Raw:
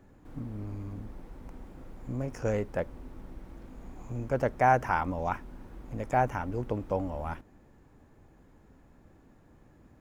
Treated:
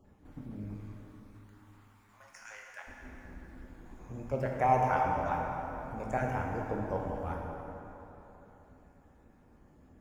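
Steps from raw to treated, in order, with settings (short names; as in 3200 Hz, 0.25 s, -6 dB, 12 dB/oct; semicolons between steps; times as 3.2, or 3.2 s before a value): random spectral dropouts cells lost 28%; 0.73–2.81 HPF 1000 Hz 24 dB/oct; plate-style reverb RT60 3.6 s, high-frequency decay 0.6×, DRR -1 dB; gain -5 dB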